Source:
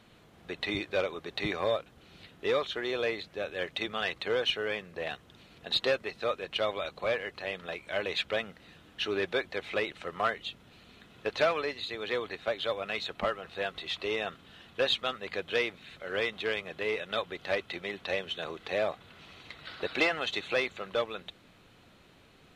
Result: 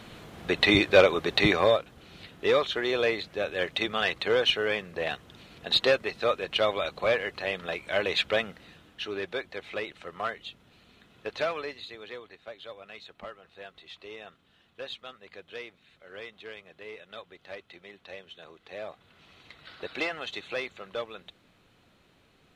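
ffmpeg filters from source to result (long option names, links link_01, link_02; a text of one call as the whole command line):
ffmpeg -i in.wav -af "volume=19.5dB,afade=type=out:start_time=1.3:duration=0.5:silence=0.446684,afade=type=out:start_time=8.44:duration=0.58:silence=0.398107,afade=type=out:start_time=11.65:duration=0.58:silence=0.375837,afade=type=in:start_time=18.64:duration=0.79:silence=0.421697" out.wav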